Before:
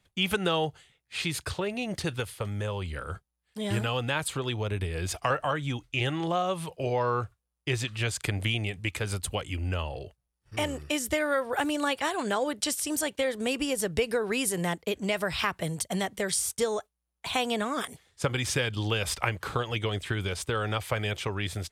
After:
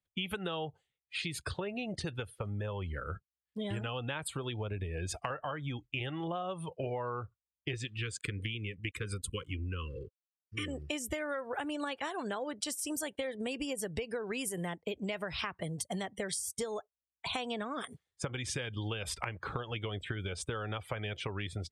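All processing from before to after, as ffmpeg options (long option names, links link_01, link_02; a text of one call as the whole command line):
ffmpeg -i in.wav -filter_complex "[0:a]asettb=1/sr,asplit=3[link_01][link_02][link_03];[link_01]atrim=end=7.734[link_04];[link_02]atrim=start=7.73:end=10.68,asetpts=PTS-STARTPTS,afade=type=in:duration=0.004:curve=qsin,afade=type=out:start_time=2.946:duration=0.004:curve=qsin,aeval=exprs='sgn(val(0))*max(abs(val(0))-0.00376,0)':channel_layout=same,asuperstop=centerf=730:order=20:qfactor=1.5[link_05];[link_03]atrim=start=10.676[link_06];[link_04][link_05]acrossfade=duration=0.004:curve1=hsin:curve2=qsin[link_07];[link_07][link_06]acrossfade=duration=0.004:curve1=qsin:curve2=hsin,afftdn=noise_reduction=23:noise_floor=-41,acompressor=threshold=-34dB:ratio=6" out.wav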